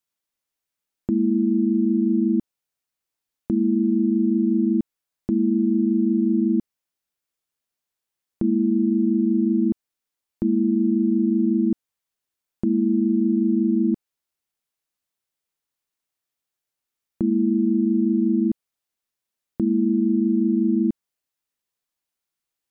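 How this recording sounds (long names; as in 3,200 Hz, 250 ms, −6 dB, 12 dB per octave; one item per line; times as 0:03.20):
background noise floor −86 dBFS
spectral slope −1.5 dB per octave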